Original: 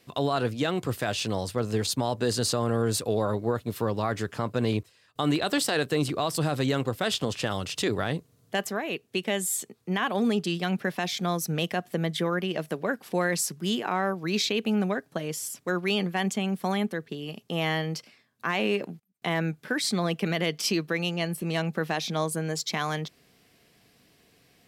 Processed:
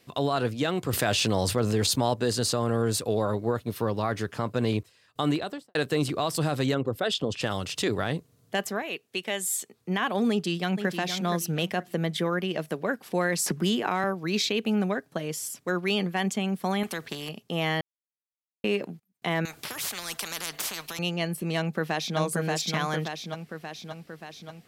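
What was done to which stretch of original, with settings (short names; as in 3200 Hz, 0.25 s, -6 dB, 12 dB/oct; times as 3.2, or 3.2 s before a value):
0.93–2.14 fast leveller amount 70%
3.62–4.33 notch 7500 Hz, Q 8.2
5.22–5.75 studio fade out
6.74–7.41 formant sharpening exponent 1.5
8.82–9.74 low shelf 360 Hz -10.5 dB
10.3–10.96 echo throw 0.47 s, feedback 25%, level -8 dB
13.46–14.04 three-band squash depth 100%
16.83–17.29 spectral compressor 2:1
17.81–18.64 mute
19.45–20.99 spectral compressor 10:1
21.58–22.18 echo throw 0.58 s, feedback 65%, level -2.5 dB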